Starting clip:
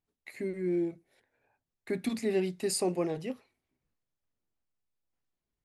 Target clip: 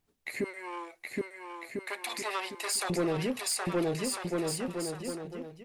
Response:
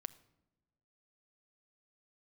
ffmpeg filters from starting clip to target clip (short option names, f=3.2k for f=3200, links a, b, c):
-filter_complex "[0:a]aeval=exprs='0.126*sin(PI/2*2*val(0)/0.126)':c=same,asettb=1/sr,asplit=3[a][b][c];[a]atrim=end=0.444[d];[b]atrim=start=0.44:end=2.9,asetpts=PTS-STARTPTS,afade=t=in:d=0.004:c=qsin,afade=t=out:st=2.456:d=0.004:c=qsin,highpass=f=710:w=0.5412,highpass=f=710:w=1.3066[e];[c]atrim=start=2.896[f];[d][e]acrossfade=d=0.004:c1=hsin:c2=qsin[g];[g][f]acrossfade=d=0.004:c1=qsin:c2=hsin,aecho=1:1:770|1348|1781|2105|2349:0.631|0.398|0.251|0.158|0.1,alimiter=limit=-23dB:level=0:latency=1:release=53"